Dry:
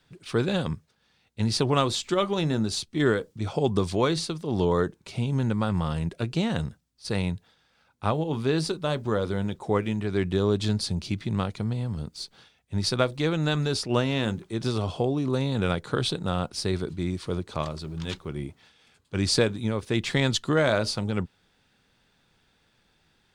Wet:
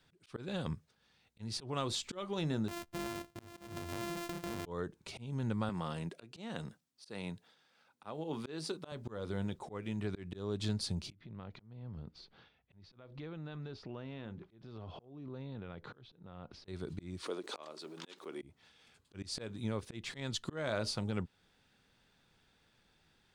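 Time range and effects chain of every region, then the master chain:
2.68–4.66 sample sorter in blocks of 128 samples + compressor 5:1, threshold -31 dBFS
5.69–8.92 HPF 200 Hz + short-mantissa float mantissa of 8-bit
11.12–16.68 compressor 8:1, threshold -36 dBFS + air absorption 260 m
17.23–18.42 HPF 290 Hz 24 dB/oct + backwards sustainer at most 140 dB/s
whole clip: auto swell 0.335 s; compressor 1.5:1, threshold -35 dBFS; gain -4.5 dB

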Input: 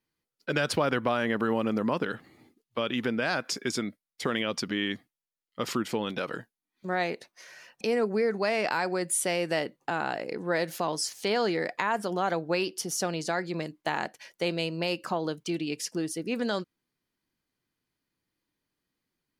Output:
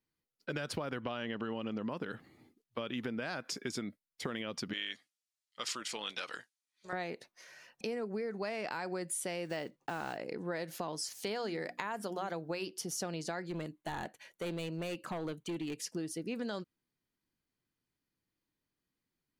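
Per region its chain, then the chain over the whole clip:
1.02–1.9 LPF 6900 Hz 24 dB/oct + bell 2900 Hz +12 dB 0.27 oct
4.73–6.93 AM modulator 250 Hz, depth 30% + weighting filter ITU-R 468
9.45–10.18 block floating point 5-bit + bell 13000 Hz -13.5 dB 0.51 oct
11.1–12.67 high shelf 8300 Hz +7.5 dB + notches 60/120/180/240/300/360 Hz
13.47–15.82 overloaded stage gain 28 dB + bell 5200 Hz -13.5 dB 0.22 oct
whole clip: low shelf 250 Hz +4 dB; compressor, threshold -28 dBFS; gain -6 dB

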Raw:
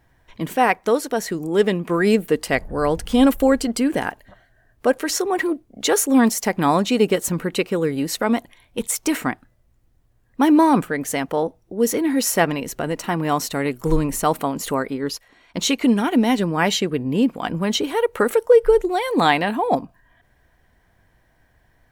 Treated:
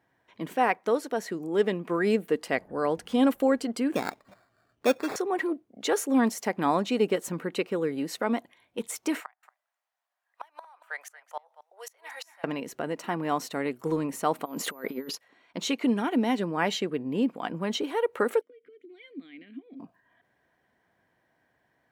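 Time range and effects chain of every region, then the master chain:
3.95–5.16 tilt -1.5 dB/oct + sample-rate reducer 3000 Hz
9.2–12.44 steep high-pass 690 Hz + flipped gate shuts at -16 dBFS, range -27 dB + echo 0.23 s -16 dB
14.44–15.14 bell 120 Hz -15 dB 0.34 oct + negative-ratio compressor -30 dBFS, ratio -0.5 + whine 14000 Hz -39 dBFS
18.41–19.8 compressor 12:1, threshold -22 dBFS + vowel filter i
whole clip: HPF 200 Hz 12 dB/oct; high shelf 4600 Hz -8.5 dB; gain -6.5 dB

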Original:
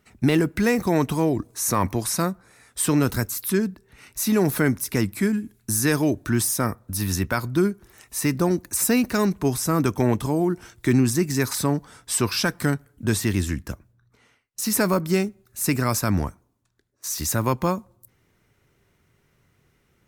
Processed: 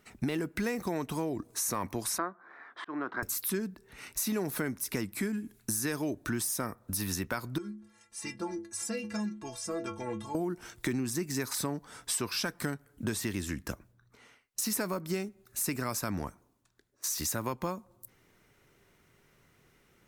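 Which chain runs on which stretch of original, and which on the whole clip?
2.18–3.23 speaker cabinet 330–2700 Hz, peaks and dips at 330 Hz +6 dB, 480 Hz -5 dB, 720 Hz +4 dB, 1100 Hz +9 dB, 1600 Hz +7 dB, 2600 Hz -10 dB + auto swell 0.613 s
7.58–10.35 LPF 9000 Hz 24 dB/oct + metallic resonator 100 Hz, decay 0.49 s, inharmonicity 0.03
whole clip: bell 82 Hz -7.5 dB 2 oct; compressor 4:1, threshold -33 dBFS; gain +1.5 dB

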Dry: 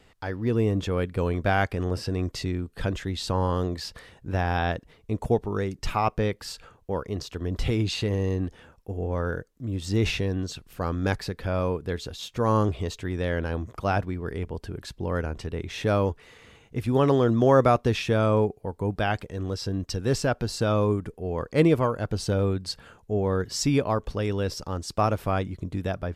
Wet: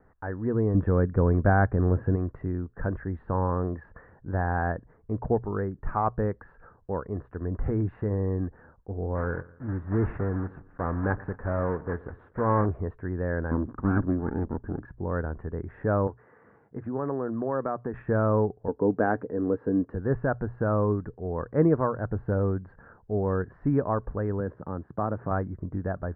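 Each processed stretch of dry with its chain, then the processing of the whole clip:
0.74–2.16 low shelf 460 Hz +7 dB + mismatched tape noise reduction encoder only
9.15–12.67 block floating point 3-bit + feedback echo 0.116 s, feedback 45%, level -21 dB
13.51–14.85 minimum comb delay 0.78 ms + small resonant body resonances 270/3500 Hz, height 13 dB, ringing for 20 ms
16.07–17.94 HPF 150 Hz + compressor 2:1, threshold -29 dBFS
18.68–19.95 HPF 150 Hz + small resonant body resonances 280/440 Hz, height 11 dB, ringing for 30 ms
24.4–25.31 compressor 1.5:1, threshold -33 dBFS + HPF 130 Hz + low shelf 390 Hz +6.5 dB
whole clip: Chebyshev low-pass 1700 Hz, order 5; notches 60/120 Hz; gain -1 dB

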